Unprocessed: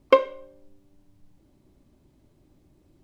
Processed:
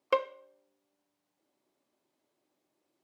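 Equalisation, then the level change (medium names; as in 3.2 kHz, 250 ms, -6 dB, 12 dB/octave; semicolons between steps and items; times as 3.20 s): high-pass 550 Hz 12 dB/octave; -8.0 dB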